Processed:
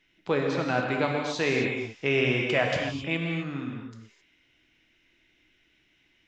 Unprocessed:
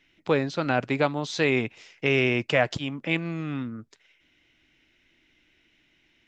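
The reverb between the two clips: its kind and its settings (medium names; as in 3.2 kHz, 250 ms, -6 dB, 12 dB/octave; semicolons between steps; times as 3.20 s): gated-style reverb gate 290 ms flat, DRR 0 dB; trim -4 dB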